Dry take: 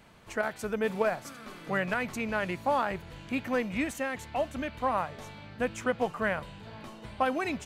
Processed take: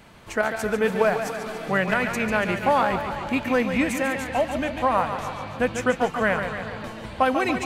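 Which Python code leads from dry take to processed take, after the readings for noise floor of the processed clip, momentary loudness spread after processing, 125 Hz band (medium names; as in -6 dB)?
-39 dBFS, 9 LU, +8.0 dB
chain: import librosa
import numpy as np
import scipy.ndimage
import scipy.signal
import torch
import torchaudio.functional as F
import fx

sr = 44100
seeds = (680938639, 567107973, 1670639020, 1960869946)

y = fx.echo_stepped(x, sr, ms=138, hz=2800.0, octaves=-0.7, feedback_pct=70, wet_db=-10.0)
y = fx.echo_warbled(y, sr, ms=143, feedback_pct=61, rate_hz=2.8, cents=84, wet_db=-8.5)
y = F.gain(torch.from_numpy(y), 7.0).numpy()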